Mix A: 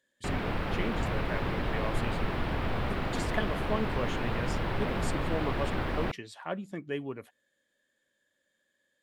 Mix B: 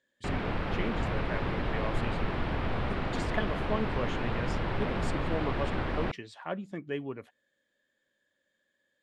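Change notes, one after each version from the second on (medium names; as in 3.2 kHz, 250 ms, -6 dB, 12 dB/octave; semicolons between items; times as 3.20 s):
master: add distance through air 64 m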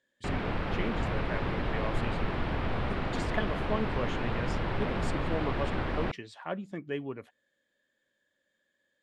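no change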